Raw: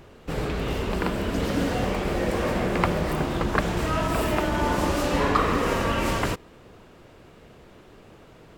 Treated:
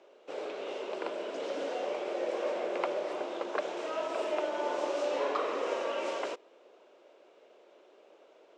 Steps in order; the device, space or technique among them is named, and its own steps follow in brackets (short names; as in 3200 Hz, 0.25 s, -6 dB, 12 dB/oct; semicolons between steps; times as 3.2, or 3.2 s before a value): phone speaker on a table (speaker cabinet 370–6600 Hz, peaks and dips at 370 Hz +3 dB, 580 Hz +8 dB, 1200 Hz -3 dB, 1800 Hz -6 dB, 4600 Hz -4 dB); gain -9 dB